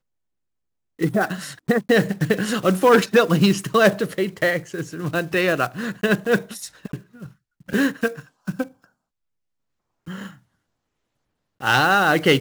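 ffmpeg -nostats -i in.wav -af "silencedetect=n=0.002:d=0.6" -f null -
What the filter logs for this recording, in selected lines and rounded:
silence_start: 0.00
silence_end: 0.99 | silence_duration: 0.99
silence_start: 8.89
silence_end: 10.06 | silence_duration: 1.18
silence_start: 10.43
silence_end: 11.60 | silence_duration: 1.18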